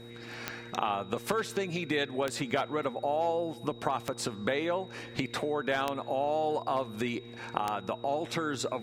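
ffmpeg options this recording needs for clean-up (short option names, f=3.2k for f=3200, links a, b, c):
-af "adeclick=t=4,bandreject=f=117.6:t=h:w=4,bandreject=f=235.2:t=h:w=4,bandreject=f=352.8:t=h:w=4,bandreject=f=470.4:t=h:w=4,bandreject=f=3.8k:w=30"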